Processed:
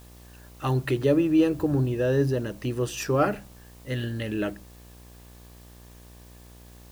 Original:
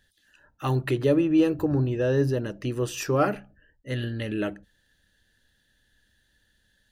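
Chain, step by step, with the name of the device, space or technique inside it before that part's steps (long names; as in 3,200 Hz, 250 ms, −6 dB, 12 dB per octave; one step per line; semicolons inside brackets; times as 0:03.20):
video cassette with head-switching buzz (hum with harmonics 60 Hz, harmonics 20, −49 dBFS −6 dB per octave; white noise bed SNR 29 dB)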